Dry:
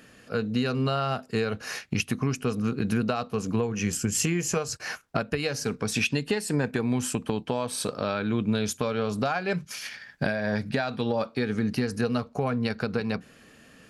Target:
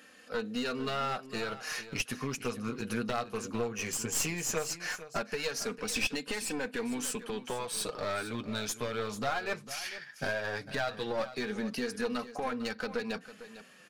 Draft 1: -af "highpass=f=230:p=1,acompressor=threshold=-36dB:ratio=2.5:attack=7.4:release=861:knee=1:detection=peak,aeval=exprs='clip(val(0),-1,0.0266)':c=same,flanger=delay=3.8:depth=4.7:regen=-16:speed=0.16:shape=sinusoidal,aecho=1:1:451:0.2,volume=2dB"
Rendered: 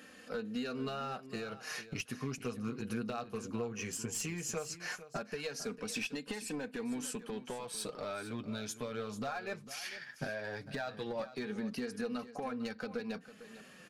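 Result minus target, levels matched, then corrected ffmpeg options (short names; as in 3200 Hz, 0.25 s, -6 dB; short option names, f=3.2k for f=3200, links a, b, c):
compressor: peak gain reduction +11 dB; 250 Hz band +3.0 dB
-af "highpass=f=570:p=1,aeval=exprs='clip(val(0),-1,0.0266)':c=same,flanger=delay=3.8:depth=4.7:regen=-16:speed=0.16:shape=sinusoidal,aecho=1:1:451:0.2,volume=2dB"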